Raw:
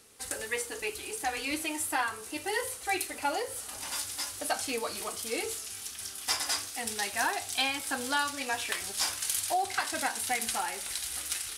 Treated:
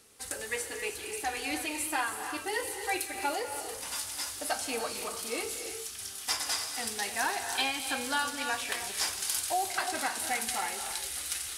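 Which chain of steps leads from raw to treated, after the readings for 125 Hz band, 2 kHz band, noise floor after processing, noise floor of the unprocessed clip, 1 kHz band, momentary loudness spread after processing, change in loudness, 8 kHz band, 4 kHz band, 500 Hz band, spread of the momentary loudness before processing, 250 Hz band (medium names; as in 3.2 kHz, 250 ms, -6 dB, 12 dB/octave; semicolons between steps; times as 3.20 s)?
-1.5 dB, -0.5 dB, -42 dBFS, -44 dBFS, -0.5 dB, 6 LU, -0.5 dB, -0.5 dB, -0.5 dB, -0.5 dB, 6 LU, -1.0 dB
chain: gated-style reverb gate 350 ms rising, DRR 6 dB; trim -1.5 dB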